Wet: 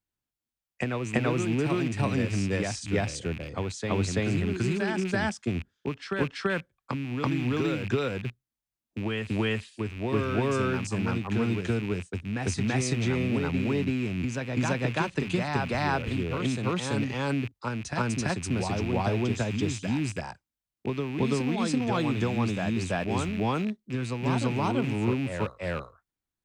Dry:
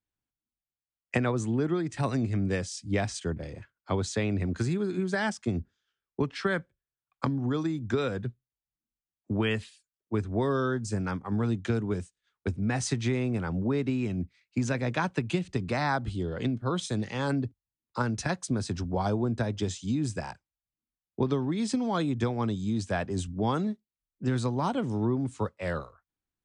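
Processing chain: rattling part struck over -36 dBFS, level -29 dBFS; reverse echo 0.334 s -3.5 dB

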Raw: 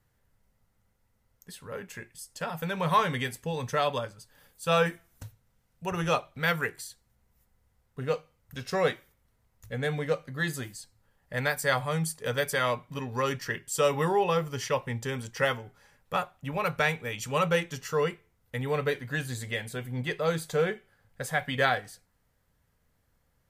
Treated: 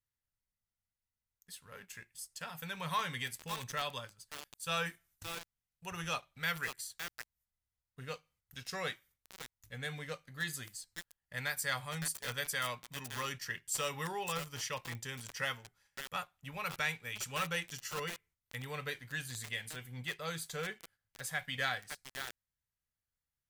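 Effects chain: gate -58 dBFS, range -8 dB; passive tone stack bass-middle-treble 5-5-5; sample leveller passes 1; lo-fi delay 0.559 s, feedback 35%, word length 6-bit, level -3.5 dB

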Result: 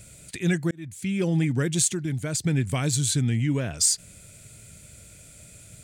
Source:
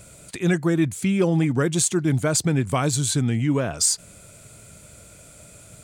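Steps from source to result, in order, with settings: EQ curve 110 Hz 0 dB, 1200 Hz -11 dB, 1800 Hz -1 dB; 0.71–1.28 fade in; 1.88–2.43 compressor, threshold -25 dBFS, peak gain reduction 7 dB

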